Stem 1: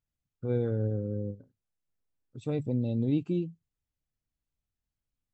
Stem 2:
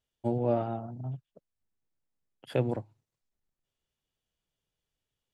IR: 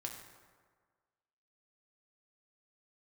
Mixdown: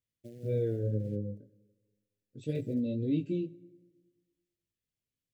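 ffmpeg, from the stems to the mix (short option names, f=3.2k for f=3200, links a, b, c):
-filter_complex "[0:a]highpass=100,flanger=delay=18:depth=3.1:speed=1.9,volume=0dB,asplit=2[a][b];[b]volume=-11.5dB[c];[1:a]acrusher=bits=5:mode=log:mix=0:aa=0.000001,acompressor=threshold=-30dB:ratio=6,volume=-13.5dB[d];[2:a]atrim=start_sample=2205[e];[c][e]afir=irnorm=-1:irlink=0[f];[a][d][f]amix=inputs=3:normalize=0,asuperstop=centerf=1000:order=8:qfactor=0.95"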